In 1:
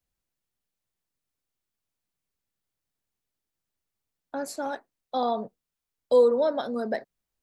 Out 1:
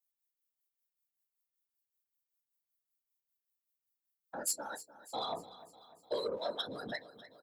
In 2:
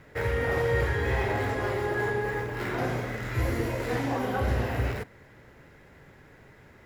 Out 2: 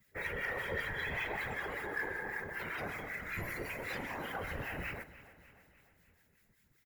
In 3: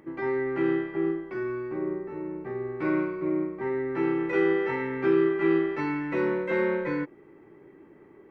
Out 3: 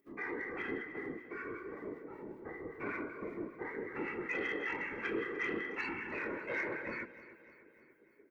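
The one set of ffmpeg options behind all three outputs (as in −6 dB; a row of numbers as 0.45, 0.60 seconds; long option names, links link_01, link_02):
-filter_complex "[0:a]afftdn=noise_reduction=21:noise_floor=-41,aemphasis=mode=production:type=50fm,afftfilt=real='hypot(re,im)*cos(2*PI*random(0))':imag='hypot(re,im)*sin(2*PI*random(1))':win_size=512:overlap=0.75,tiltshelf=frequency=1300:gain=-9.5,asplit=2[link_01][link_02];[link_02]acompressor=threshold=-45dB:ratio=16,volume=1dB[link_03];[link_01][link_03]amix=inputs=2:normalize=0,bandreject=frequency=62.5:width_type=h:width=4,bandreject=frequency=125:width_type=h:width=4,bandreject=frequency=187.5:width_type=h:width=4,bandreject=frequency=250:width_type=h:width=4,bandreject=frequency=312.5:width_type=h:width=4,bandreject=frequency=375:width_type=h:width=4,bandreject=frequency=437.5:width_type=h:width=4,bandreject=frequency=500:width_type=h:width=4,acrossover=split=1100[link_04][link_05];[link_04]aeval=exprs='val(0)*(1-0.7/2+0.7/2*cos(2*PI*5.2*n/s))':channel_layout=same[link_06];[link_05]aeval=exprs='val(0)*(1-0.7/2-0.7/2*cos(2*PI*5.2*n/s))':channel_layout=same[link_07];[link_06][link_07]amix=inputs=2:normalize=0,asoftclip=type=tanh:threshold=-25dB,asplit=2[link_08][link_09];[link_09]aecho=0:1:299|598|897|1196|1495:0.15|0.0823|0.0453|0.0249|0.0137[link_10];[link_08][link_10]amix=inputs=2:normalize=0"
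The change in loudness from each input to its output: −12.5, −9.5, −12.0 LU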